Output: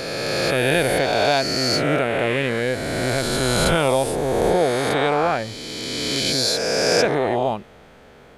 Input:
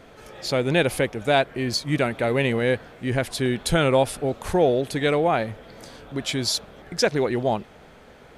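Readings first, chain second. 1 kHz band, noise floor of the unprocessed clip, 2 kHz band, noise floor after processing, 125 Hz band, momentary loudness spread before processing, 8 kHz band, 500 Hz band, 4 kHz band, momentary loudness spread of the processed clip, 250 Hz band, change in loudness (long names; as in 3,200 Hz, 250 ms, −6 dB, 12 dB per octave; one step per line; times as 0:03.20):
+4.5 dB, −49 dBFS, +4.5 dB, −47 dBFS, +1.0 dB, 10 LU, +6.5 dB, +3.0 dB, +6.5 dB, 6 LU, +1.0 dB, +3.0 dB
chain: peak hold with a rise ahead of every peak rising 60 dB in 2.96 s
level −2.5 dB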